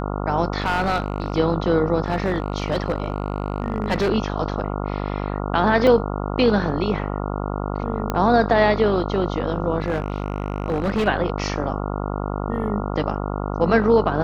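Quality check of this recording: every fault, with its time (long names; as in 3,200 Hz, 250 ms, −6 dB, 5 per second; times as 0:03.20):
mains buzz 50 Hz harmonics 28 −26 dBFS
0:00.60–0:01.38: clipping −16 dBFS
0:02.04–0:04.10: clipping −15.5 dBFS
0:05.87: drop-out 2.8 ms
0:08.10: click −9 dBFS
0:09.80–0:11.08: clipping −17 dBFS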